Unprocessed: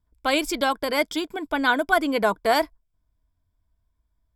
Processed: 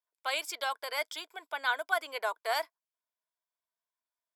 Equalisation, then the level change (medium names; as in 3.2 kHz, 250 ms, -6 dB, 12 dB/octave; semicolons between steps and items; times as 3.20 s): Bessel high-pass 800 Hz, order 6; -7.5 dB